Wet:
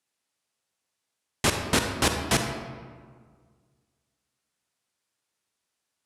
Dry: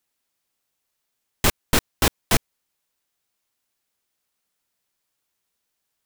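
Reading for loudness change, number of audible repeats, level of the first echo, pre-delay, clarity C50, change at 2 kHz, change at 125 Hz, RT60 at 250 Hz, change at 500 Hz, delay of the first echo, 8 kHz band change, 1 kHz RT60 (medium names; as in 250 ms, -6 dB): -3.0 dB, no echo, no echo, 37 ms, 5.0 dB, -1.5 dB, -2.5 dB, 1.9 s, -1.0 dB, no echo, -2.5 dB, 1.7 s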